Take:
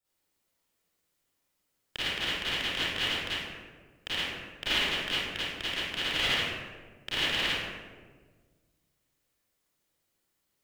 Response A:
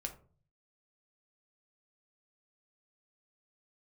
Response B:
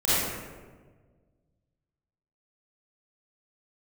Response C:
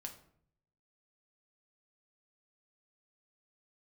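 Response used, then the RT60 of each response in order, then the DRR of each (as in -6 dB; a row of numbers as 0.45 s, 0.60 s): B; 0.40 s, 1.5 s, 0.60 s; 3.5 dB, -12.5 dB, 2.5 dB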